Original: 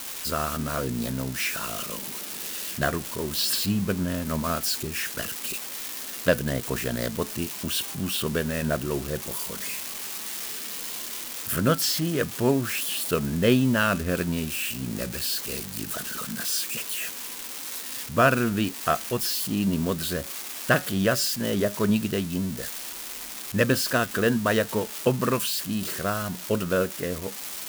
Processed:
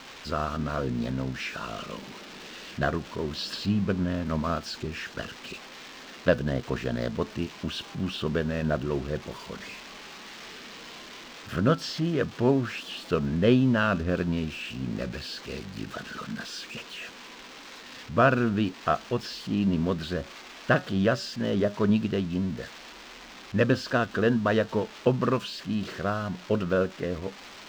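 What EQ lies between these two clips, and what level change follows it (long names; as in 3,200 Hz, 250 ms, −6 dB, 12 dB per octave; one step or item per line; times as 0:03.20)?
dynamic equaliser 2,100 Hz, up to −4 dB, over −40 dBFS, Q 2.3
high-frequency loss of the air 190 metres
0.0 dB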